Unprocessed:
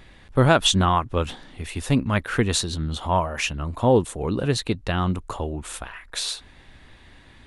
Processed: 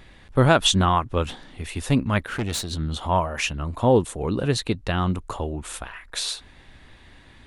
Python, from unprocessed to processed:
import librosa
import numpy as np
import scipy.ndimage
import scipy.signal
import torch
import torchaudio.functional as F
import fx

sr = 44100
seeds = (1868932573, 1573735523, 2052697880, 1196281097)

y = fx.tube_stage(x, sr, drive_db=21.0, bias=0.7, at=(2.26, 2.7), fade=0.02)